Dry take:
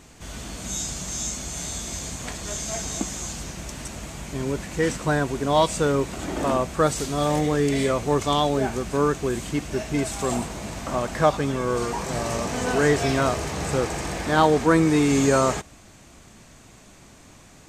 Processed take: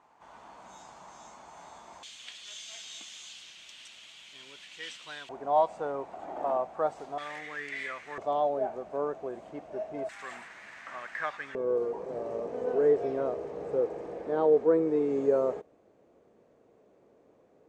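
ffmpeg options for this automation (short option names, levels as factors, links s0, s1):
-af "asetnsamples=n=441:p=0,asendcmd='2.03 bandpass f 3200;5.29 bandpass f 750;7.18 bandpass f 1900;8.18 bandpass f 640;10.09 bandpass f 1800;11.55 bandpass f 470',bandpass=f=920:t=q:w=3.8:csg=0"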